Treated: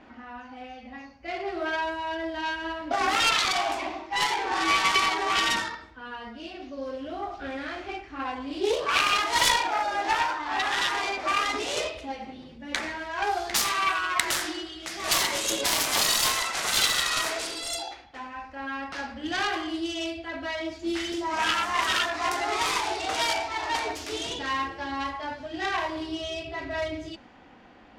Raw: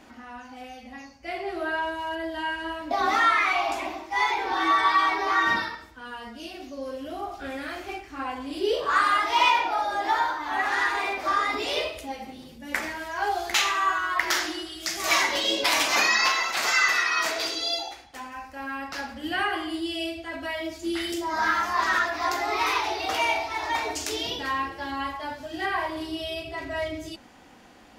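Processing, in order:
phase distortion by the signal itself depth 0.34 ms
low-pass that shuts in the quiet parts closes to 2,900 Hz, open at −21 dBFS

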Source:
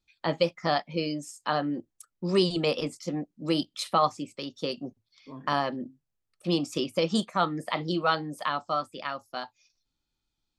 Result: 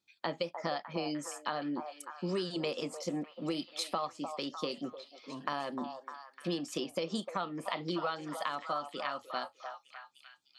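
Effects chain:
high-pass filter 180 Hz 12 dB per octave
downward compressor, threshold −32 dBFS, peak gain reduction 13.5 dB
on a send: echo through a band-pass that steps 302 ms, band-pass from 760 Hz, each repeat 0.7 octaves, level −5 dB

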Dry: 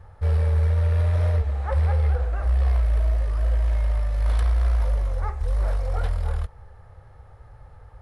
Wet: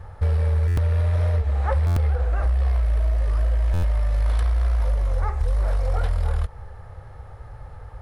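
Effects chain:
downward compressor, threshold −25 dBFS, peak gain reduction 8 dB
buffer that repeats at 0:00.67/0:01.86/0:03.73, samples 512, times 8
level +7 dB

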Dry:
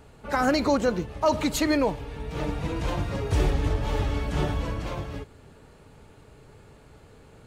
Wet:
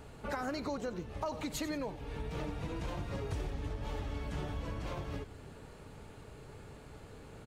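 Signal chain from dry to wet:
downward compressor 6 to 1, threshold −36 dBFS, peak gain reduction 17.5 dB
echo with shifted repeats 91 ms, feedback 36%, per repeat −140 Hz, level −14 dB

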